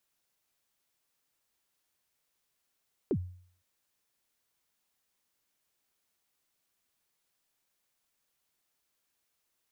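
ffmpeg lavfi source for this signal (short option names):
-f lavfi -i "aevalsrc='0.0708*pow(10,-3*t/0.55)*sin(2*PI*(460*0.065/log(90/460)*(exp(log(90/460)*min(t,0.065)/0.065)-1)+90*max(t-0.065,0)))':d=0.51:s=44100"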